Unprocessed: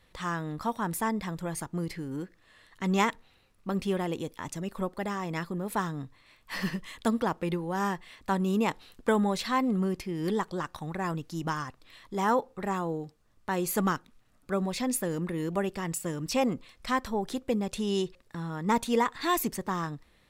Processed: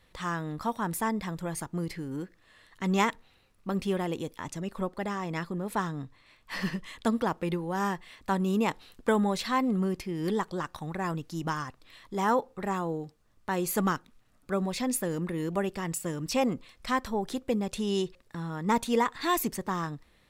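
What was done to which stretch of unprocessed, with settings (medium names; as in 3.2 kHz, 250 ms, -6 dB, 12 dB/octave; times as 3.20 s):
4.42–7.13 s: treble shelf 12 kHz -8.5 dB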